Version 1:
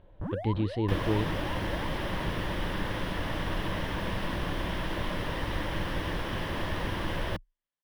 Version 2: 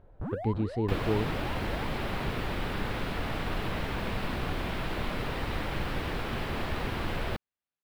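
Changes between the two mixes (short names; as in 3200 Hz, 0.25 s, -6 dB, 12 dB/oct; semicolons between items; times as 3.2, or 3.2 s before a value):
speech: add band shelf 3100 Hz -9 dB 1.2 oct; master: remove ripple EQ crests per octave 1.2, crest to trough 6 dB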